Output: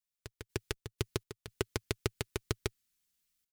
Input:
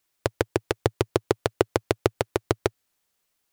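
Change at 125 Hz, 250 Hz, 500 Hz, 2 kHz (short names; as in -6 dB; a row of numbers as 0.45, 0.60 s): -8.5, -13.5, -16.0, -10.5 dB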